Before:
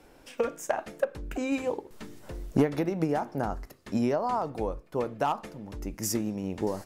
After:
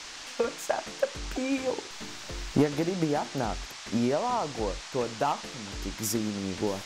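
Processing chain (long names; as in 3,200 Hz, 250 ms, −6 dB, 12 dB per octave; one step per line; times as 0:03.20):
noise in a band 670–6,600 Hz −43 dBFS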